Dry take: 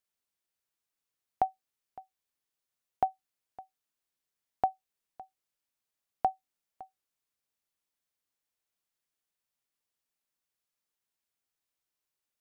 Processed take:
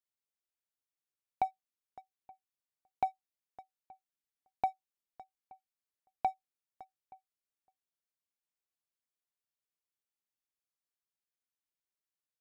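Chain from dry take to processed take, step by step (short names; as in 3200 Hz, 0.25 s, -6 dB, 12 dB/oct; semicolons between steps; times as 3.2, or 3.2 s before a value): dynamic EQ 930 Hz, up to +6 dB, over -43 dBFS, Q 2.6; sample leveller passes 1; outdoor echo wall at 150 m, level -24 dB; gain -8 dB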